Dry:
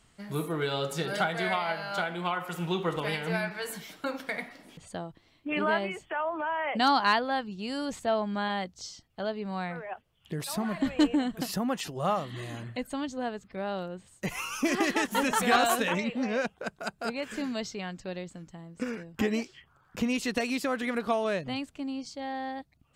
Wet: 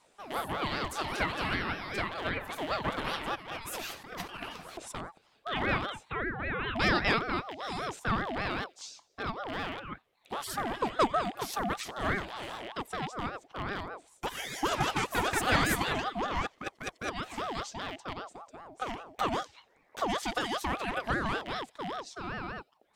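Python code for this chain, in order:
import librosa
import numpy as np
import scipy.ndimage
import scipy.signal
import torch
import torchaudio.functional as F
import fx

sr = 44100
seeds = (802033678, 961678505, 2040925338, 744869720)

y = fx.rattle_buzz(x, sr, strikes_db=-40.0, level_db=-29.0)
y = fx.over_compress(y, sr, threshold_db=-42.0, ratio=-1.0, at=(3.34, 4.91), fade=0.02)
y = fx.echo_wet_highpass(y, sr, ms=88, feedback_pct=52, hz=2800.0, wet_db=-23.5)
y = fx.ring_lfo(y, sr, carrier_hz=730.0, swing_pct=40, hz=5.1)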